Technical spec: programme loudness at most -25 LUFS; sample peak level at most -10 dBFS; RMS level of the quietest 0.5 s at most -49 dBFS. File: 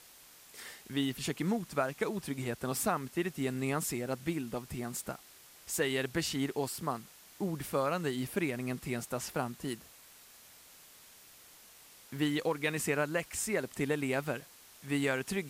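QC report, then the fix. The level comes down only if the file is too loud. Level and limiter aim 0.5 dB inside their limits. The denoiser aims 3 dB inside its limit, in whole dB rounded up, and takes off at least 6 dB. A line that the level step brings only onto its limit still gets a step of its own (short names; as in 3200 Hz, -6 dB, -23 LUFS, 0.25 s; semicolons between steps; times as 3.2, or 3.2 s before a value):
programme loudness -34.5 LUFS: OK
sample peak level -17.5 dBFS: OK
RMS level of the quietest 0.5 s -57 dBFS: OK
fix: none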